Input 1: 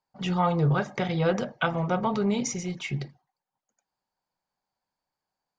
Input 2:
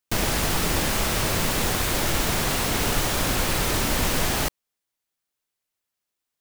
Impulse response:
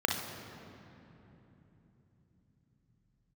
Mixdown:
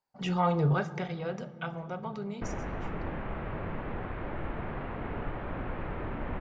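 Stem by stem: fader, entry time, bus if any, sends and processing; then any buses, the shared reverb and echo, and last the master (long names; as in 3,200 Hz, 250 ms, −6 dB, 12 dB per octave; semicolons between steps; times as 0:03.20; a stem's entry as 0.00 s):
0:00.74 −4 dB → 0:01.25 −13 dB → 0:02.19 −13 dB → 0:02.81 −22.5 dB, 0.00 s, send −20 dB, no processing
−10.0 dB, 2.30 s, no send, Bessel low-pass filter 1,400 Hz, order 6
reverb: on, RT60 3.5 s, pre-delay 34 ms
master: no processing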